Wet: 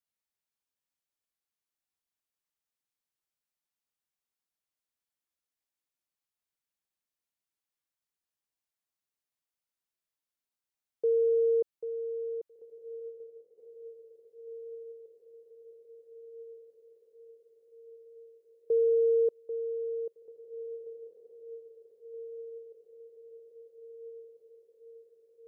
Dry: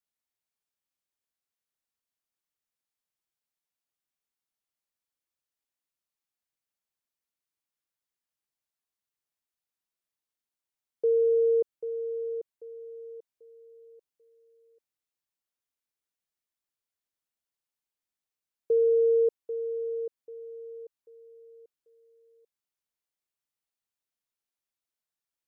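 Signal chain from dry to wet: diffused feedback echo 1.977 s, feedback 62%, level -13.5 dB; 12.99–13.58 upward expander 1.5:1, over -50 dBFS; gain -2.5 dB

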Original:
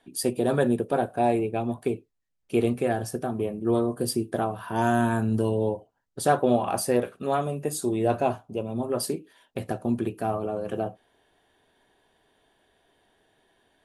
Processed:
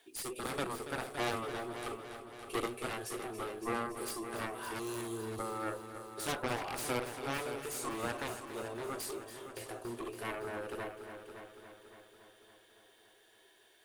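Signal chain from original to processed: spectral delete 4.79–5.62, 480–3100 Hz; resonant low shelf 270 Hz -12 dB, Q 3; harmonic-percussive split percussive -11 dB; passive tone stack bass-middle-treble 5-5-5; in parallel at +1 dB: compressor, threshold -53 dBFS, peak gain reduction 17.5 dB; on the sum: added harmonics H 4 -16 dB, 7 -6 dB, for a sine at -27 dBFS; requantised 12-bit, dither none; on a send: multi-head echo 0.282 s, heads first and second, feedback 54%, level -12 dB

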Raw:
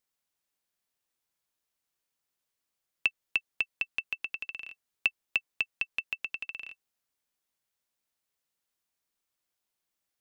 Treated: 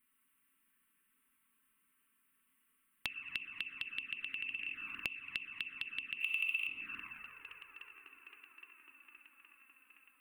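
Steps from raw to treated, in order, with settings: EQ curve 150 Hz 0 dB, 270 Hz +10 dB, 680 Hz -19 dB, 1100 Hz +5 dB, 2800 Hz +7 dB, 5600 Hz -29 dB, 9100 Hz +6 dB; band-limited delay 0.818 s, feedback 64%, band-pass 760 Hz, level -14.5 dB; plate-style reverb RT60 3.2 s, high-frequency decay 0.3×, DRR -1 dB; compressor 10:1, threshold -42 dBFS, peak gain reduction 27 dB; 6.2–6.67 tilt +4.5 dB/oct; envelope flanger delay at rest 4.8 ms, full sweep at -42 dBFS; gain +6 dB

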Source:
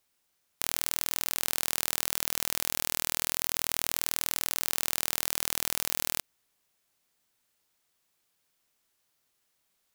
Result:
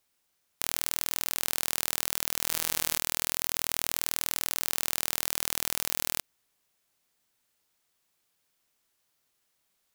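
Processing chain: 2.36–2.98 flutter echo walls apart 11.7 m, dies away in 0.4 s

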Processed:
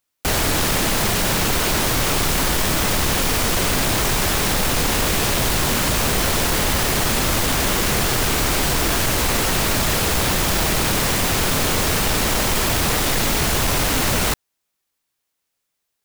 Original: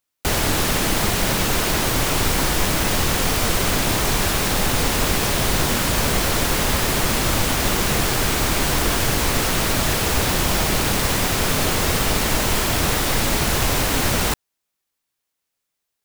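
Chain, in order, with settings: wavefolder -16 dBFS; gain +2.5 dB

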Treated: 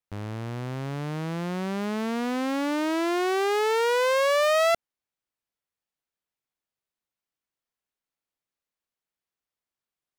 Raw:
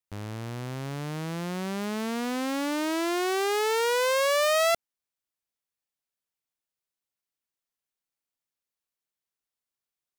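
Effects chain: high shelf 4300 Hz -9 dB; gain +2.5 dB

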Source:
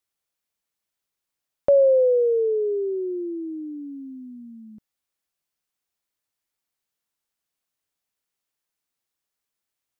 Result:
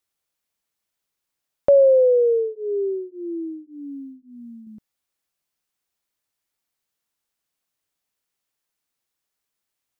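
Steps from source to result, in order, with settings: 2.28–4.67 beating tremolo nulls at 1.8 Hz; gain +2.5 dB

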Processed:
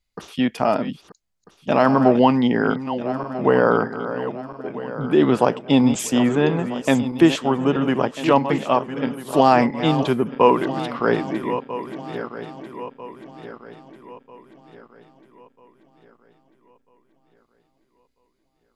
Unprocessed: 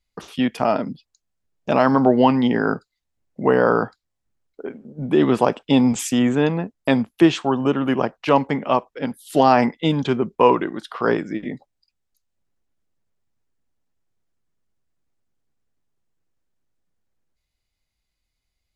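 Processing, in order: regenerating reverse delay 0.647 s, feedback 63%, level -11 dB

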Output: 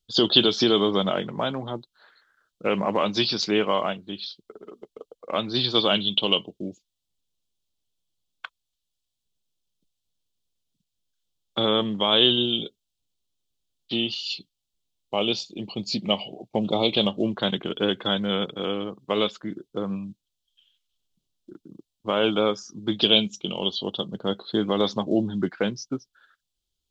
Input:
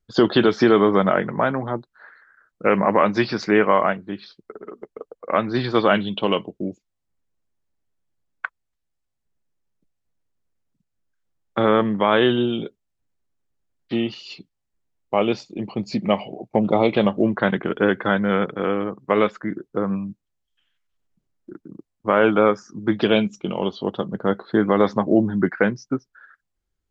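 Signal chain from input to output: resonant high shelf 2500 Hz +10 dB, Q 3; gain -5.5 dB

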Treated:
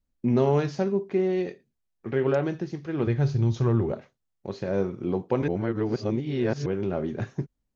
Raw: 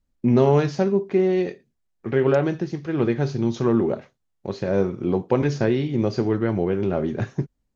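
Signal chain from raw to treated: 3.07–3.92 resonant low shelf 150 Hz +10 dB, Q 1.5; 5.48–6.66 reverse; gain -5 dB

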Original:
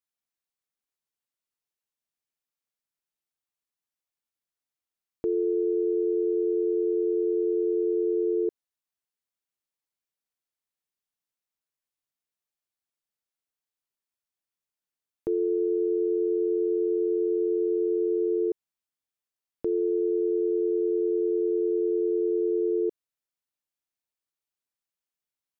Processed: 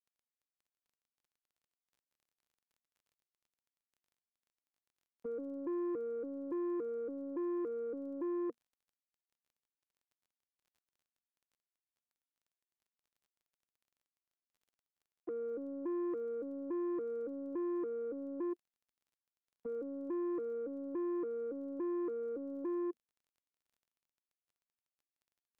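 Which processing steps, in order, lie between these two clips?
arpeggiated vocoder minor triad, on A#3, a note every 0.283 s; soft clip -25.5 dBFS, distortion -14 dB; crackle 24/s -55 dBFS; gain -8 dB

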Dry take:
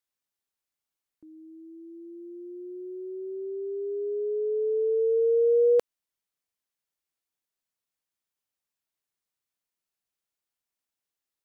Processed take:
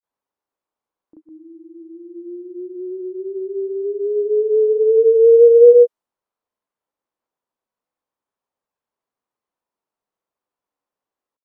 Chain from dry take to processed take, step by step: grains 0.123 s, pitch spread up and down by 0 st; ten-band EQ 250 Hz +6 dB, 500 Hz +8 dB, 1000 Hz +11 dB; mismatched tape noise reduction decoder only; gain +3.5 dB

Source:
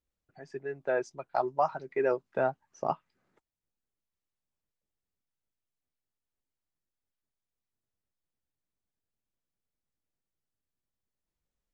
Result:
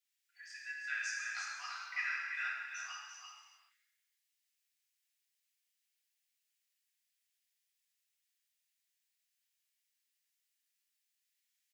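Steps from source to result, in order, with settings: steep high-pass 1800 Hz 36 dB/oct; echo 0.34 s -5.5 dB; non-linear reverb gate 0.47 s falling, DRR -5 dB; gain +4 dB

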